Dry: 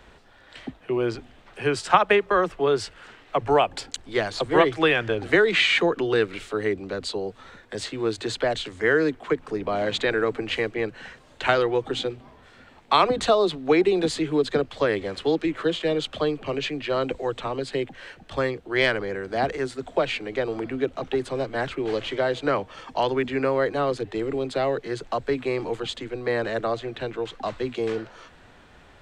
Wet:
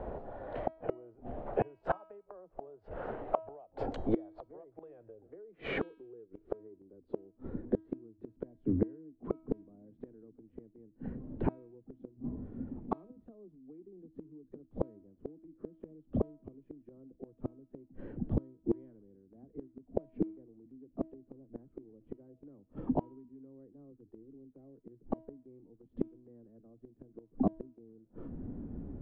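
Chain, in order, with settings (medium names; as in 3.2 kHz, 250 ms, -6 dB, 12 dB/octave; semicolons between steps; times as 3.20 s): low-pass sweep 640 Hz -> 260 Hz, 4.40–8.10 s; compression 8:1, threshold -21 dBFS, peak gain reduction 13.5 dB; inverted gate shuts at -26 dBFS, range -37 dB; de-hum 321.3 Hz, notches 33; trim +9.5 dB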